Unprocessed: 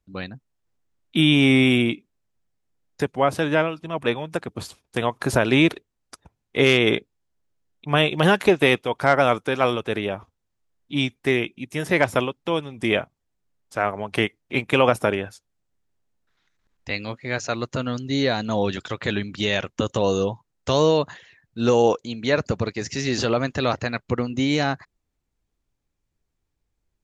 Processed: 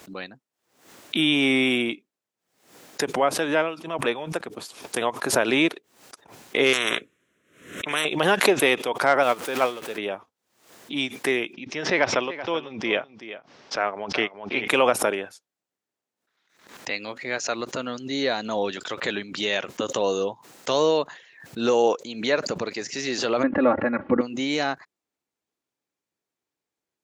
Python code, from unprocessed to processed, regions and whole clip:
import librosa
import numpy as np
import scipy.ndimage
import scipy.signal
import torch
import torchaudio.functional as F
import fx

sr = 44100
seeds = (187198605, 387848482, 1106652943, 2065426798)

y = fx.chain(x, sr, fx.air_absorb(metres=59.0),
    fx.fixed_phaser(hz=2000.0, stages=4),
    fx.spectral_comp(ratio=4.0), at=(6.73, 8.05))
y = fx.chain(y, sr, fx.zero_step(step_db=-25.5),
    fx.upward_expand(threshold_db=-27.0, expansion=2.5), at=(9.23, 9.98))
y = fx.chain(y, sr, fx.ellip_lowpass(hz=5600.0, order=4, stop_db=80),
    fx.echo_single(ms=381, db=-14.0), at=(11.53, 14.68))
y = fx.chain(y, sr, fx.lowpass(hz=1900.0, slope=24),
    fx.low_shelf(hz=360.0, db=11.0),
    fx.comb(ms=3.6, depth=0.88), at=(23.43, 24.21))
y = scipy.signal.sosfilt(scipy.signal.butter(2, 300.0, 'highpass', fs=sr, output='sos'), y)
y = fx.pre_swell(y, sr, db_per_s=100.0)
y = F.gain(torch.from_numpy(y), -1.5).numpy()